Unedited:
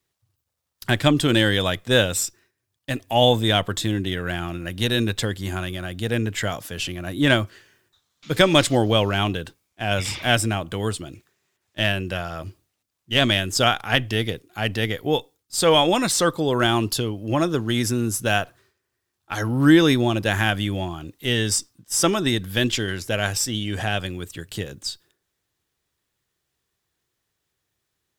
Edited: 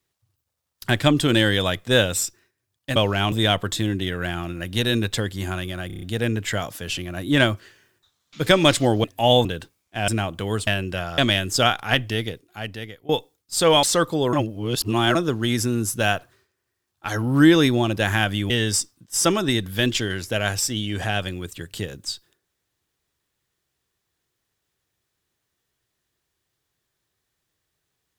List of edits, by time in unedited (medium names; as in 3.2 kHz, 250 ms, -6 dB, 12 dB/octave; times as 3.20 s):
2.96–3.37 s: swap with 8.94–9.30 s
5.92 s: stutter 0.03 s, 6 plays
9.93–10.41 s: delete
11.00–11.85 s: delete
12.36–13.19 s: delete
13.92–15.10 s: fade out, to -21.5 dB
15.84–16.09 s: delete
16.59–17.41 s: reverse
20.76–21.28 s: delete